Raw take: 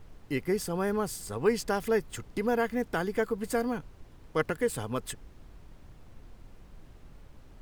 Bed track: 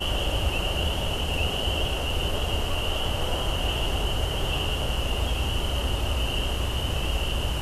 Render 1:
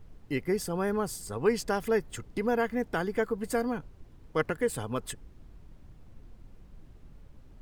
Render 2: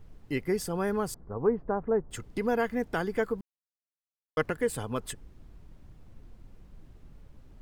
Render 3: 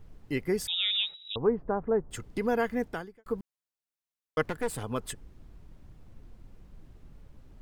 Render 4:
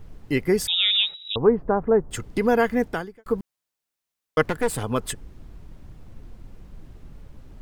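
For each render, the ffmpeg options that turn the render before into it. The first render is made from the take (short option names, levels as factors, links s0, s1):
-af "afftdn=nr=6:nf=-53"
-filter_complex "[0:a]asettb=1/sr,asplit=3[s0][s1][s2];[s0]atrim=end=1.144[s3];[s1]atrim=start=1.14:end=2.11,asetpts=PTS-STARTPTS,afade=t=in:d=0.004:c=qsin,afade=t=out:st=0.966:d=0.004:c=qsin,lowpass=f=1200:w=0.5412,lowpass=f=1200:w=1.3066[s4];[s2]atrim=start=2.106[s5];[s3][s4]acrossfade=d=0.004:c1=hsin:c2=qsin[s6];[s6][s5]acrossfade=d=0.004:c1=qsin:c2=hsin,asplit=3[s7][s8][s9];[s7]atrim=end=3.41,asetpts=PTS-STARTPTS,afade=t=out:st=3.406:d=0.004:c=hsin[s10];[s8]atrim=start=3.41:end=4.37,asetpts=PTS-STARTPTS,volume=0[s11];[s9]atrim=start=4.37,asetpts=PTS-STARTPTS,afade=t=in:d=0.004:c=hsin[s12];[s10][s11][s12]concat=n=3:v=0:a=1"
-filter_complex "[0:a]asettb=1/sr,asplit=3[s0][s1][s2];[s0]atrim=end=0.674[s3];[s1]atrim=start=0.67:end=1.36,asetpts=PTS-STARTPTS,afade=t=in:d=0.004:c=qsin,afade=t=out:st=0.686:d=0.004:c=qsin,lowpass=f=3300:t=q:w=0.5098,lowpass=f=3300:t=q:w=0.6013,lowpass=f=3300:t=q:w=0.9,lowpass=f=3300:t=q:w=2.563,afreqshift=-3900[s4];[s2]atrim=start=1.356[s5];[s3][s4]acrossfade=d=0.004:c1=hsin:c2=qsin[s6];[s6][s5]acrossfade=d=0.004:c1=qsin:c2=hsin,asettb=1/sr,asplit=3[s7][s8][s9];[s7]atrim=end=4.434[s10];[s8]atrim=start=4.43:end=4.83,asetpts=PTS-STARTPTS,afade=t=in:d=0.004:c=qsin,afade=t=out:st=0.396:d=0.004:c=qsin,aeval=exprs='clip(val(0),-1,0.0141)':c=same[s11];[s9]atrim=start=4.826[s12];[s10][s11]acrossfade=d=0.004:c1=hsin:c2=qsin[s13];[s13][s12]acrossfade=d=0.004:c1=qsin:c2=hsin,asplit=2[s14][s15];[s14]atrim=end=3.26,asetpts=PTS-STARTPTS,afade=t=out:st=2.85:d=0.41:c=qua[s16];[s15]atrim=start=3.26,asetpts=PTS-STARTPTS,afade=t=in:d=0.004:c=hsin[s17];[s16][s17]concat=n=2:v=0:a=1"
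-af "volume=2.51"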